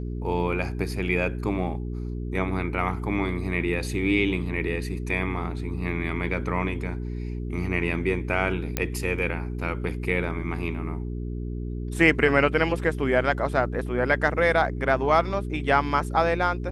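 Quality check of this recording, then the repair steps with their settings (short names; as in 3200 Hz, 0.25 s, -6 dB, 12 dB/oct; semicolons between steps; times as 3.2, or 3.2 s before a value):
hum 60 Hz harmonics 7 -31 dBFS
8.77 pop -8 dBFS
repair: de-click; de-hum 60 Hz, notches 7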